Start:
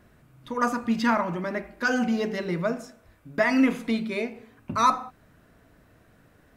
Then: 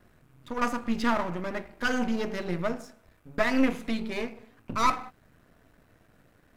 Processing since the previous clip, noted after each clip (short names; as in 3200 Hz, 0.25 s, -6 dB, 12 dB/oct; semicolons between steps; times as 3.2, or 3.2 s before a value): half-wave gain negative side -12 dB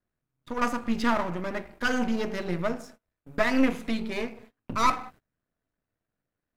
gate -50 dBFS, range -26 dB; gain +1 dB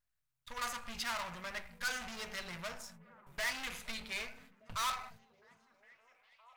overloaded stage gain 25 dB; passive tone stack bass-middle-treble 10-0-10; delay with a stepping band-pass 0.407 s, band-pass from 160 Hz, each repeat 0.7 oct, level -10 dB; gain +2 dB